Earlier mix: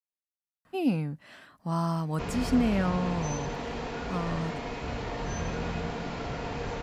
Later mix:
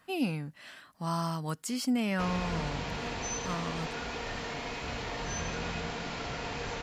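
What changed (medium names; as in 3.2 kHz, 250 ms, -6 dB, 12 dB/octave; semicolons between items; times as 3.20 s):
speech: entry -0.65 s; master: add tilt shelf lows -5 dB, about 1.3 kHz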